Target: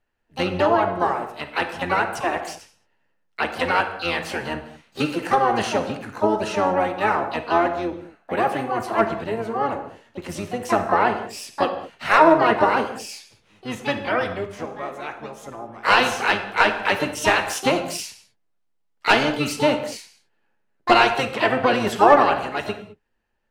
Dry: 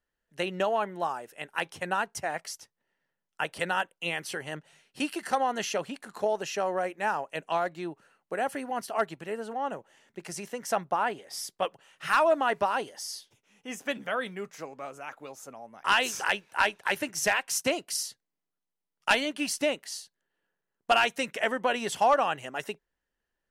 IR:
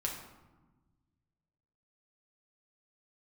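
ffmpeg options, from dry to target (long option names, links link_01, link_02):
-filter_complex "[0:a]lowpass=frequency=2800:poles=1,asplit=3[link_01][link_02][link_03];[link_02]asetrate=22050,aresample=44100,atempo=2,volume=-7dB[link_04];[link_03]asetrate=66075,aresample=44100,atempo=0.66742,volume=-7dB[link_05];[link_01][link_04][link_05]amix=inputs=3:normalize=0,asplit=2[link_06][link_07];[1:a]atrim=start_sample=2205,atrim=end_sample=6615,asetrate=29106,aresample=44100[link_08];[link_07][link_08]afir=irnorm=-1:irlink=0,volume=-3.5dB[link_09];[link_06][link_09]amix=inputs=2:normalize=0,volume=2dB"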